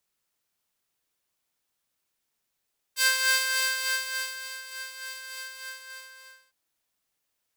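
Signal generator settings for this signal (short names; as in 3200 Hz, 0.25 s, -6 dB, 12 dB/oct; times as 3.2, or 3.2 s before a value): synth patch with tremolo C5, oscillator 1 saw, oscillator 2 square, interval +19 st, detune 7 cents, oscillator 2 level -7 dB, sub -21.5 dB, noise -17 dB, filter highpass, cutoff 1300 Hz, Q 0.71, filter envelope 1.5 oct, filter decay 0.11 s, filter sustain 40%, attack 57 ms, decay 1.48 s, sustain -16.5 dB, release 1.14 s, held 2.42 s, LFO 3.4 Hz, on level 5.5 dB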